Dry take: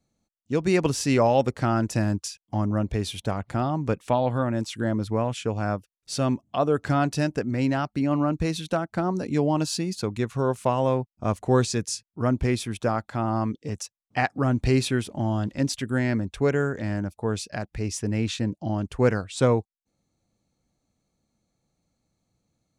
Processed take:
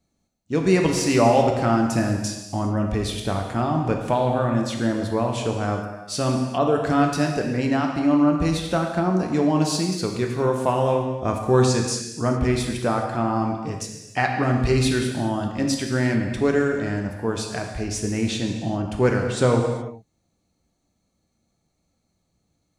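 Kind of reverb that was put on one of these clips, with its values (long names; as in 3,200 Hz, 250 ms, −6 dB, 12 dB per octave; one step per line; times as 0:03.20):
reverb whose tail is shaped and stops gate 440 ms falling, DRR 1.5 dB
level +1.5 dB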